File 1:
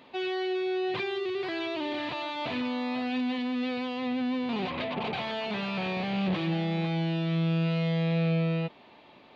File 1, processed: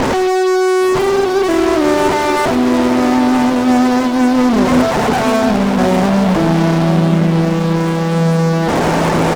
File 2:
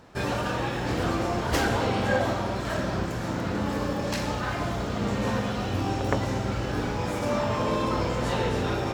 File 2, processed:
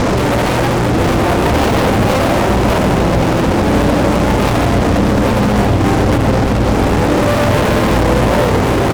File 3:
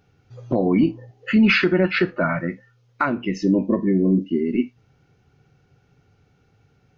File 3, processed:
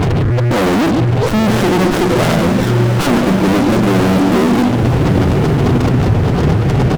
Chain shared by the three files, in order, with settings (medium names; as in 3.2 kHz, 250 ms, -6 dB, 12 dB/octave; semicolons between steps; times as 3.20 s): one-bit delta coder 32 kbps, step -27.5 dBFS; low-pass 2 kHz 24 dB/octave; spectral gate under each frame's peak -15 dB strong; delay 140 ms -15 dB; fuzz box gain 40 dB, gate -44 dBFS; echo that smears into a reverb 1092 ms, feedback 40%, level -5.5 dB; sliding maximum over 17 samples; trim +2 dB